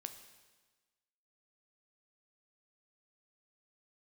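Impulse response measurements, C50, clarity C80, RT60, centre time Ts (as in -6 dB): 10.0 dB, 11.5 dB, 1.3 s, 16 ms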